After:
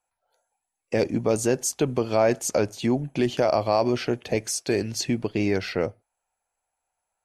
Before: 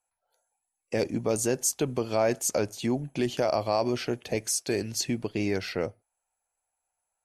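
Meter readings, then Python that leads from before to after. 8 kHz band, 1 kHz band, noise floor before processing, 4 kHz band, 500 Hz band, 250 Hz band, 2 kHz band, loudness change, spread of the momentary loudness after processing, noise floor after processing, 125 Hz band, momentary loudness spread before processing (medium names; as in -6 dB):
-0.5 dB, +4.5 dB, -84 dBFS, +2.0 dB, +4.5 dB, +4.5 dB, +4.0 dB, +3.5 dB, 5 LU, -83 dBFS, +4.5 dB, 5 LU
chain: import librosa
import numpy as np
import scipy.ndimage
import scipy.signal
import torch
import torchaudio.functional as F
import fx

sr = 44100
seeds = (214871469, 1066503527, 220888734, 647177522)

y = fx.high_shelf(x, sr, hz=6600.0, db=-9.0)
y = F.gain(torch.from_numpy(y), 4.5).numpy()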